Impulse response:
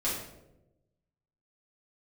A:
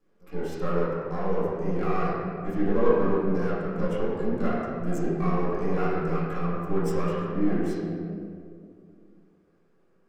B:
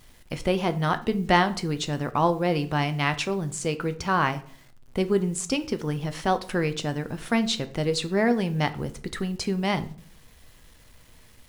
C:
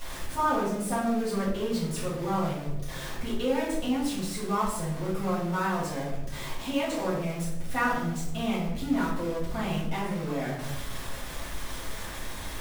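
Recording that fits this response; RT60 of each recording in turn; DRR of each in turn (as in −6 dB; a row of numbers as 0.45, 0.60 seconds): C; 2.3, 0.50, 0.95 seconds; −11.5, 9.5, −9.0 decibels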